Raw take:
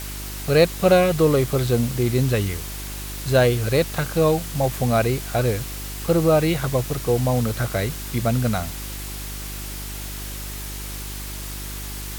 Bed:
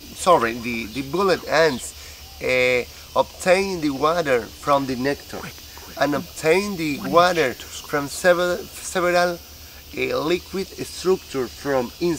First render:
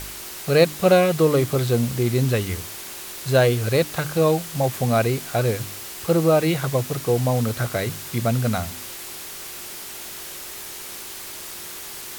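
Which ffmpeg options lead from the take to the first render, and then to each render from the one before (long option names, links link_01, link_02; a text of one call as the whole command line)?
ffmpeg -i in.wav -af "bandreject=frequency=50:width_type=h:width=4,bandreject=frequency=100:width_type=h:width=4,bandreject=frequency=150:width_type=h:width=4,bandreject=frequency=200:width_type=h:width=4,bandreject=frequency=250:width_type=h:width=4,bandreject=frequency=300:width_type=h:width=4" out.wav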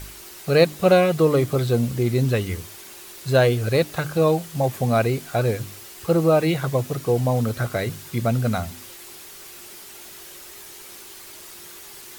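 ffmpeg -i in.wav -af "afftdn=noise_reduction=7:noise_floor=-36" out.wav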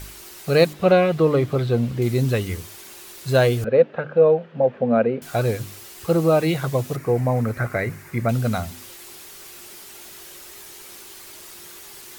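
ffmpeg -i in.wav -filter_complex "[0:a]asettb=1/sr,asplit=3[link_01][link_02][link_03];[link_01]atrim=end=0.734[link_04];[link_02]atrim=start=0.73:end=2.02,asetpts=PTS-STARTPTS,afade=type=in:duration=0.004:curve=qsin,afade=type=out:start_time=1.286:duration=0.004:curve=qsin,acrossover=split=4200[link_05][link_06];[link_06]acompressor=threshold=-52dB:ratio=4:attack=1:release=60[link_07];[link_05][link_07]amix=inputs=2:normalize=0[link_08];[link_03]atrim=start=2.016[link_09];[link_04][link_08]acrossfade=duration=0.004:curve1=hsin:curve2=qsin[link_10];[link_10][link_09]acrossfade=duration=0.004:curve1=qsin:curve2=hsin,asettb=1/sr,asplit=3[link_11][link_12][link_13];[link_11]atrim=end=3.644[link_14];[link_12]atrim=start=3.64:end=5.22,asetpts=PTS-STARTPTS,afade=type=in:duration=0.004:curve=qsin,afade=type=out:start_time=1.576:duration=0.004:curve=qsin,highpass=220,equalizer=frequency=230:width_type=q:width=4:gain=9,equalizer=frequency=320:width_type=q:width=4:gain=-8,equalizer=frequency=510:width_type=q:width=4:gain=9,equalizer=frequency=770:width_type=q:width=4:gain=-3,equalizer=frequency=1100:width_type=q:width=4:gain=-6,equalizer=frequency=2100:width_type=q:width=4:gain=-7,lowpass=frequency=2300:width=0.5412,lowpass=frequency=2300:width=1.3066[link_15];[link_13]atrim=start=5.216[link_16];[link_14][link_15]acrossfade=duration=0.004:curve1=hsin:curve2=qsin[link_17];[link_17][link_16]acrossfade=duration=0.004:curve1=qsin:curve2=hsin,asettb=1/sr,asplit=3[link_18][link_19][link_20];[link_18]atrim=end=6.964[link_21];[link_19]atrim=start=6.96:end=8.29,asetpts=PTS-STARTPTS,afade=type=in:duration=0.004:curve=qsin,afade=type=out:start_time=1.326:duration=0.004:curve=qsin,highshelf=frequency=2600:width_type=q:width=3:gain=-7[link_22];[link_20]atrim=start=8.286[link_23];[link_21][link_22]acrossfade=duration=0.004:curve1=hsin:curve2=qsin[link_24];[link_24][link_23]acrossfade=duration=0.004:curve1=qsin:curve2=hsin" out.wav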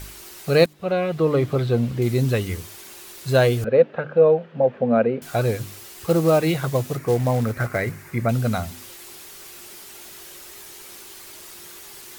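ffmpeg -i in.wav -filter_complex "[0:a]asettb=1/sr,asplit=3[link_01][link_02][link_03];[link_01]atrim=end=6.084[link_04];[link_02]atrim=start=6.08:end=7.92,asetpts=PTS-STARTPTS,afade=type=in:duration=0.004:curve=qsin,afade=type=out:start_time=1.836:duration=0.004:curve=qsin,acrusher=bits=5:mode=log:mix=0:aa=0.000001[link_05];[link_03]atrim=start=7.916[link_06];[link_04][link_05]acrossfade=duration=0.004:curve1=hsin:curve2=qsin[link_07];[link_07][link_06]acrossfade=duration=0.004:curve1=qsin:curve2=hsin,asplit=2[link_08][link_09];[link_08]atrim=end=0.66,asetpts=PTS-STARTPTS,afade=type=out:start_time=0.656:duration=0.004:curve=hsin:silence=0.125893[link_10];[link_09]atrim=start=0.66,asetpts=PTS-STARTPTS,afade=type=in:duration=0.78:silence=0.125893[link_11];[link_10][link_11]concat=n=2:v=0:a=1" out.wav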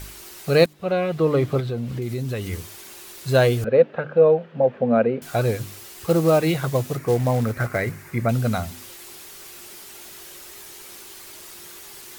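ffmpeg -i in.wav -filter_complex "[0:a]asettb=1/sr,asplit=3[link_01][link_02][link_03];[link_01]atrim=end=1.604[link_04];[link_02]atrim=start=1.6:end=2.53,asetpts=PTS-STARTPTS,afade=type=in:duration=0.004:curve=qsin,afade=type=out:start_time=0.926:duration=0.004:curve=qsin,acompressor=threshold=-25dB:ratio=3:attack=3.2:release=140:knee=1:detection=peak[link_05];[link_03]atrim=start=2.526[link_06];[link_04][link_05]acrossfade=duration=0.004:curve1=hsin:curve2=qsin[link_07];[link_07][link_06]acrossfade=duration=0.004:curve1=qsin:curve2=hsin" out.wav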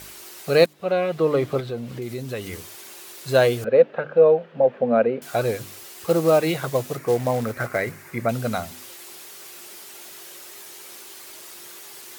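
ffmpeg -i in.wav -af "highpass=frequency=260:poles=1,equalizer=frequency=560:width_type=o:width=0.77:gain=2" out.wav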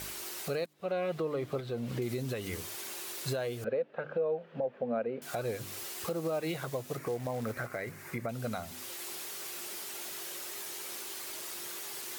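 ffmpeg -i in.wav -af "acompressor=threshold=-31dB:ratio=2,alimiter=limit=-24dB:level=0:latency=1:release=466" out.wav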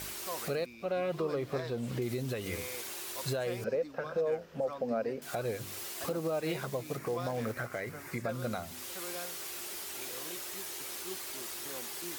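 ffmpeg -i in.wav -i bed.wav -filter_complex "[1:a]volume=-26dB[link_01];[0:a][link_01]amix=inputs=2:normalize=0" out.wav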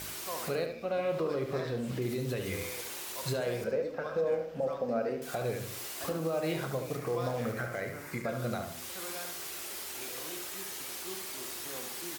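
ffmpeg -i in.wav -filter_complex "[0:a]asplit=2[link_01][link_02];[link_02]adelay=31,volume=-12dB[link_03];[link_01][link_03]amix=inputs=2:normalize=0,asplit=2[link_04][link_05];[link_05]adelay=73,lowpass=frequency=3800:poles=1,volume=-6dB,asplit=2[link_06][link_07];[link_07]adelay=73,lowpass=frequency=3800:poles=1,volume=0.41,asplit=2[link_08][link_09];[link_09]adelay=73,lowpass=frequency=3800:poles=1,volume=0.41,asplit=2[link_10][link_11];[link_11]adelay=73,lowpass=frequency=3800:poles=1,volume=0.41,asplit=2[link_12][link_13];[link_13]adelay=73,lowpass=frequency=3800:poles=1,volume=0.41[link_14];[link_04][link_06][link_08][link_10][link_12][link_14]amix=inputs=6:normalize=0" out.wav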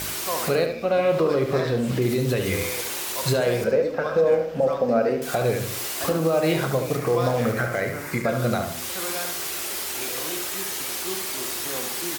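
ffmpeg -i in.wav -af "volume=11dB" out.wav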